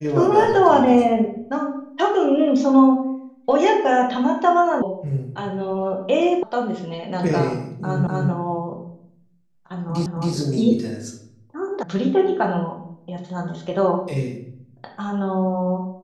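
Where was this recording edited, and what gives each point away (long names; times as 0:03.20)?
0:04.82: cut off before it has died away
0:06.43: cut off before it has died away
0:08.07: the same again, the last 0.25 s
0:10.06: the same again, the last 0.27 s
0:11.83: cut off before it has died away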